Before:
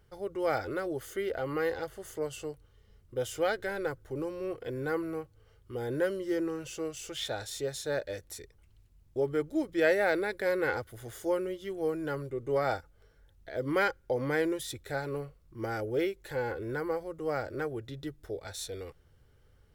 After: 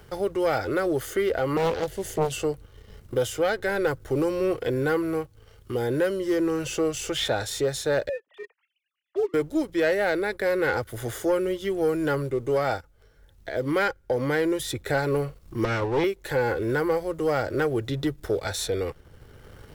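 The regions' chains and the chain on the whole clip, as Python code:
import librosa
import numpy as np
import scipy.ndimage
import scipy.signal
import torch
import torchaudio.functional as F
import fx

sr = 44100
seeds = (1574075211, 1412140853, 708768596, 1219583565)

y = fx.chain(x, sr, fx.peak_eq(hz=1200.0, db=-14.5, octaves=0.71),
    fx.doppler_dist(depth_ms=0.61), at=(1.57, 2.32))
y = fx.chain(y, sr, fx.sine_speech(),
    fx.highpass(hz=570.0, slope=6), at=(8.09, 9.34))
y = fx.chain(y, sr, fx.lower_of_two(delay_ms=0.52),
    fx.lowpass(hz=5600.0, slope=12), at=(15.64, 16.04))
y = fx.rider(y, sr, range_db=4, speed_s=0.5)
y = fx.leveller(y, sr, passes=1)
y = fx.band_squash(y, sr, depth_pct=40)
y = y * 10.0 ** (4.5 / 20.0)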